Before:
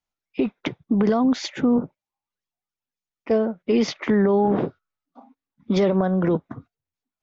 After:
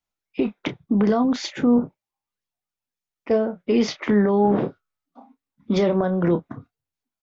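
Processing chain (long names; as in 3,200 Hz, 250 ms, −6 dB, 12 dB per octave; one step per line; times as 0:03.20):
double-tracking delay 29 ms −10.5 dB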